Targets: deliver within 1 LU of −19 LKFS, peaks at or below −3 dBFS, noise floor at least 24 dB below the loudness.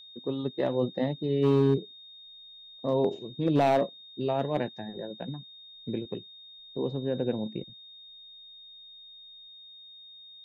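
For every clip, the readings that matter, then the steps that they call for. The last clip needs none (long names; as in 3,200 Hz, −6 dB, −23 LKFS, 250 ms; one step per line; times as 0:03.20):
share of clipped samples 0.5%; peaks flattened at −16.5 dBFS; interfering tone 3,700 Hz; level of the tone −47 dBFS; integrated loudness −29.5 LKFS; sample peak −16.5 dBFS; target loudness −19.0 LKFS
→ clipped peaks rebuilt −16.5 dBFS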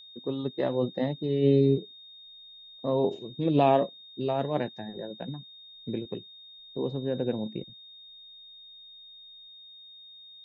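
share of clipped samples 0.0%; interfering tone 3,700 Hz; level of the tone −47 dBFS
→ notch filter 3,700 Hz, Q 30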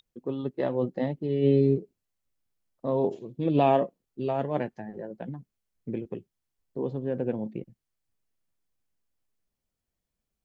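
interfering tone none found; integrated loudness −28.5 LKFS; sample peak −10.0 dBFS; target loudness −19.0 LKFS
→ level +9.5 dB
brickwall limiter −3 dBFS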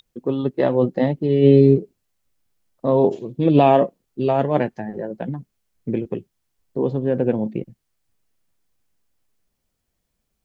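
integrated loudness −19.5 LKFS; sample peak −3.0 dBFS; background noise floor −76 dBFS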